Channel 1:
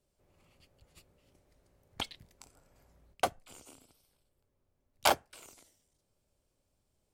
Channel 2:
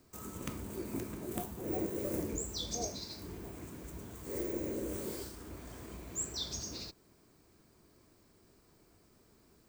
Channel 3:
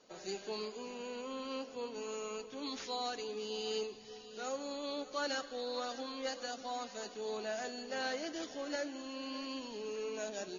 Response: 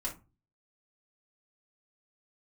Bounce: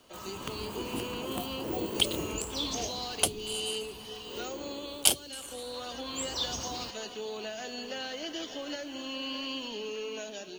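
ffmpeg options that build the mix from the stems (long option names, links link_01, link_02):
-filter_complex "[0:a]equalizer=frequency=9800:width_type=o:width=0.73:gain=14,volume=2dB[link_01];[1:a]equalizer=frequency=1000:width_type=o:width=1.2:gain=14,volume=6.5dB,afade=type=out:start_time=3.15:duration=0.5:silence=0.375837,afade=type=in:start_time=6.03:duration=0.34:silence=0.316228[link_02];[2:a]acompressor=threshold=-40dB:ratio=6,acrusher=bits=11:mix=0:aa=0.000001,volume=1.5dB[link_03];[link_01][link_02][link_03]amix=inputs=3:normalize=0,acrossover=split=440|3000[link_04][link_05][link_06];[link_05]acompressor=threshold=-43dB:ratio=6[link_07];[link_04][link_07][link_06]amix=inputs=3:normalize=0,equalizer=frequency=3000:width=3.4:gain=11,dynaudnorm=framelen=180:gausssize=5:maxgain=4dB"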